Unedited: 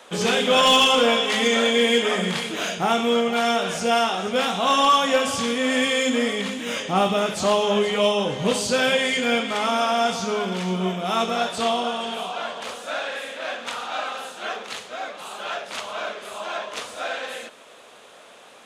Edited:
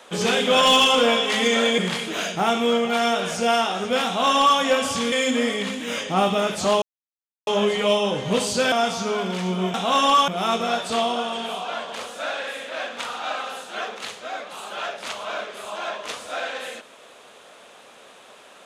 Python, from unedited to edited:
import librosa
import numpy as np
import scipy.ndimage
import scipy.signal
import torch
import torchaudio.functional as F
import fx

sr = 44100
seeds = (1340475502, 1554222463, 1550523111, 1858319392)

y = fx.edit(x, sr, fx.cut(start_s=1.78, length_s=0.43),
    fx.duplicate(start_s=4.49, length_s=0.54, to_s=10.96),
    fx.cut(start_s=5.55, length_s=0.36),
    fx.insert_silence(at_s=7.61, length_s=0.65),
    fx.cut(start_s=8.86, length_s=1.08), tone=tone)